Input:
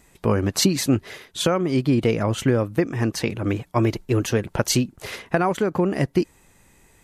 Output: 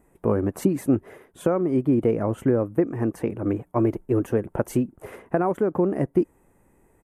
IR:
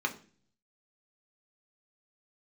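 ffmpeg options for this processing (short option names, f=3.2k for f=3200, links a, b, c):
-af "firequalizer=gain_entry='entry(130,0);entry(310,6);entry(4200,-24);entry(9100,-5)':delay=0.05:min_phase=1,volume=-5dB"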